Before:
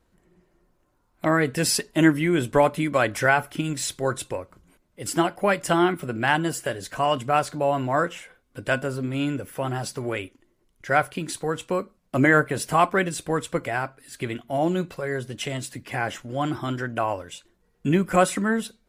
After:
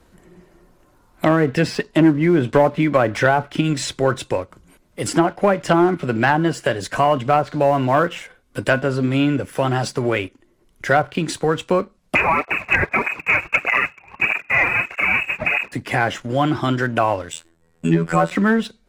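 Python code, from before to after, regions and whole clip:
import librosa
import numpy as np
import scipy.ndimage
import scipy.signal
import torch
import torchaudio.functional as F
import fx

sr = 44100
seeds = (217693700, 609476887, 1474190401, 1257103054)

y = fx.chain(x, sr, fx.halfwave_hold(),
    fx.freq_invert(carrier_hz=2700),
    fx.flanger_cancel(hz=1.6, depth_ms=4.9), at=(12.15, 15.72))
y = fx.chain(y, sr, fx.peak_eq(hz=8000.0, db=11.0, octaves=0.21),
    fx.robotise(hz=82.9), at=(17.32, 18.31))
y = fx.env_lowpass_down(y, sr, base_hz=980.0, full_db=-15.5)
y = fx.leveller(y, sr, passes=1)
y = fx.band_squash(y, sr, depth_pct=40)
y = y * librosa.db_to_amplitude(3.5)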